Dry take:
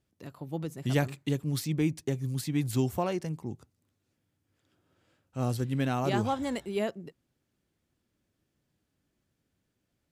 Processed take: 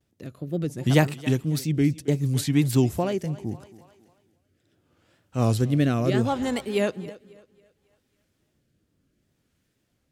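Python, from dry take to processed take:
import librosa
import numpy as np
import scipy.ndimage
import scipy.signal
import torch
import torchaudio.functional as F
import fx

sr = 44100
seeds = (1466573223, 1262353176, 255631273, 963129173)

y = fx.wow_flutter(x, sr, seeds[0], rate_hz=2.1, depth_cents=130.0)
y = fx.echo_thinned(y, sr, ms=273, feedback_pct=41, hz=230.0, wet_db=-17.5)
y = fx.rotary(y, sr, hz=0.7)
y = y * librosa.db_to_amplitude(8.5)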